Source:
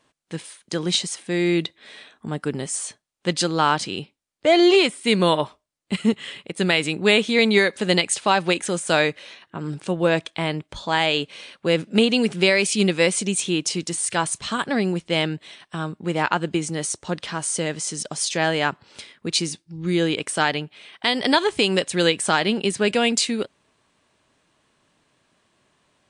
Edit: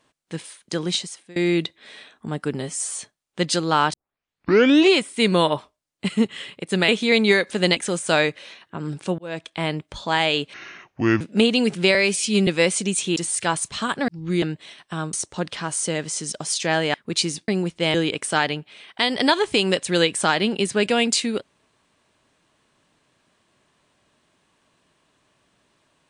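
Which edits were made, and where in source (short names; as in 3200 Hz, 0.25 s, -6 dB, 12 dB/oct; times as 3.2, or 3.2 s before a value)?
0.79–1.36 fade out, to -23.5 dB
2.61–2.86 stretch 1.5×
3.81 tape start 0.97 s
6.76–7.15 cut
8.03–8.57 cut
9.99–10.45 fade in
11.34–11.79 speed 67%
12.53–12.88 stretch 1.5×
13.57–13.86 cut
14.78–15.24 swap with 19.65–19.99
15.95–16.84 cut
18.65–19.11 cut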